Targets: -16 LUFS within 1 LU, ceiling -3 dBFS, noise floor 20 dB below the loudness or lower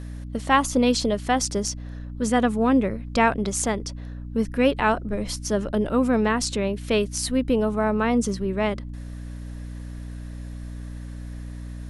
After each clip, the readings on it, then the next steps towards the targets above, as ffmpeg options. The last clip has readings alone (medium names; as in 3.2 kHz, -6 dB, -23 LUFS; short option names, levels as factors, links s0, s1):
hum 60 Hz; highest harmonic 300 Hz; hum level -33 dBFS; loudness -23.5 LUFS; peak level -6.0 dBFS; loudness target -16.0 LUFS
-> -af "bandreject=f=60:t=h:w=6,bandreject=f=120:t=h:w=6,bandreject=f=180:t=h:w=6,bandreject=f=240:t=h:w=6,bandreject=f=300:t=h:w=6"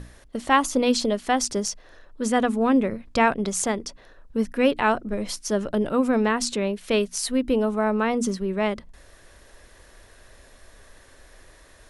hum not found; loudness -23.5 LUFS; peak level -6.0 dBFS; loudness target -16.0 LUFS
-> -af "volume=2.37,alimiter=limit=0.708:level=0:latency=1"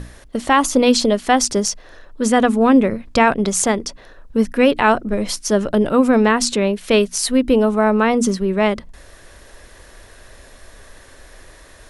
loudness -16.5 LUFS; peak level -3.0 dBFS; noise floor -44 dBFS